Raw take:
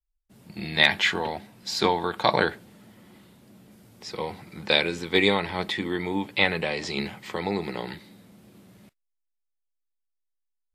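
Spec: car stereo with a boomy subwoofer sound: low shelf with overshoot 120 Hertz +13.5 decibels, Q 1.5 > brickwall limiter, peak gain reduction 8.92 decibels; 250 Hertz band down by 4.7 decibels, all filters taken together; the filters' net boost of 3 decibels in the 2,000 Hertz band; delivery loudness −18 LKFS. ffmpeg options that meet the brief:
ffmpeg -i in.wav -af "lowshelf=frequency=120:width_type=q:width=1.5:gain=13.5,equalizer=frequency=250:width_type=o:gain=-4,equalizer=frequency=2000:width_type=o:gain=3.5,volume=9dB,alimiter=limit=-1.5dB:level=0:latency=1" out.wav

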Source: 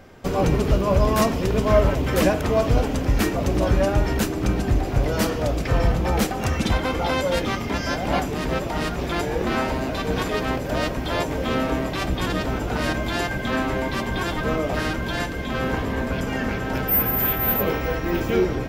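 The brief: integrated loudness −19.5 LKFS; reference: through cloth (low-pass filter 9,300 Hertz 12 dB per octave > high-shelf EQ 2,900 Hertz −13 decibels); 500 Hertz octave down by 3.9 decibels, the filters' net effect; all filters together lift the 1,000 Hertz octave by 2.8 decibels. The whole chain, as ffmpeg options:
ffmpeg -i in.wav -af "lowpass=9300,equalizer=frequency=500:width_type=o:gain=-7,equalizer=frequency=1000:width_type=o:gain=7.5,highshelf=frequency=2900:gain=-13,volume=5dB" out.wav

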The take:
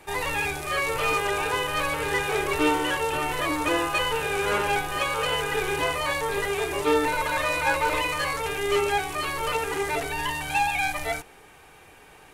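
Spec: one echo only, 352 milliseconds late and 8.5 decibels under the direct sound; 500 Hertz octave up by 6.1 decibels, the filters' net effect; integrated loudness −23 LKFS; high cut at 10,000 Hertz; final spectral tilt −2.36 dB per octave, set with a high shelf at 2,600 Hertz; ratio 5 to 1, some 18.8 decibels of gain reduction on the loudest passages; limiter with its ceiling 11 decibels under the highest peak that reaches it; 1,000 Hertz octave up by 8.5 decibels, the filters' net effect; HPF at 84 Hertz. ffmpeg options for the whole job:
ffmpeg -i in.wav -af "highpass=84,lowpass=10000,equalizer=frequency=500:width_type=o:gain=5.5,equalizer=frequency=1000:width_type=o:gain=8,highshelf=frequency=2600:gain=4.5,acompressor=threshold=-34dB:ratio=5,alimiter=level_in=9dB:limit=-24dB:level=0:latency=1,volume=-9dB,aecho=1:1:352:0.376,volume=17dB" out.wav

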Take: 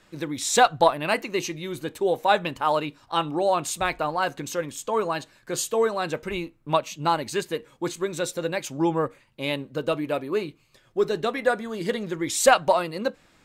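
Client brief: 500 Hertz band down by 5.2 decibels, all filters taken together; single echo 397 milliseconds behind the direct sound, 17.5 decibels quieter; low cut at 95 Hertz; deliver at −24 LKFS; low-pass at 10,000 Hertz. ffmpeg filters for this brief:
ffmpeg -i in.wav -af "highpass=95,lowpass=10000,equalizer=frequency=500:width_type=o:gain=-6.5,aecho=1:1:397:0.133,volume=4dB" out.wav

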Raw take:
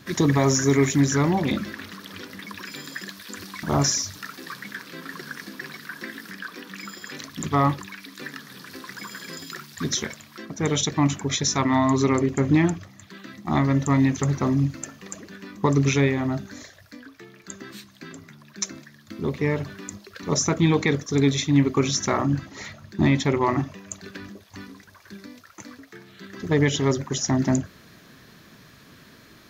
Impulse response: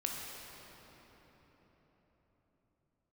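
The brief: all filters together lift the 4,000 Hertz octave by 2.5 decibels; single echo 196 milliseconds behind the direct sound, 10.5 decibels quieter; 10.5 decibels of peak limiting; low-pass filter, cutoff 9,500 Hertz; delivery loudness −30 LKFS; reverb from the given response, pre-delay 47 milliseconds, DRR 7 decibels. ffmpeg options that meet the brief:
-filter_complex "[0:a]lowpass=9500,equalizer=frequency=4000:width_type=o:gain=3.5,alimiter=limit=-18dB:level=0:latency=1,aecho=1:1:196:0.299,asplit=2[link_01][link_02];[1:a]atrim=start_sample=2205,adelay=47[link_03];[link_02][link_03]afir=irnorm=-1:irlink=0,volume=-10dB[link_04];[link_01][link_04]amix=inputs=2:normalize=0,volume=-1dB"

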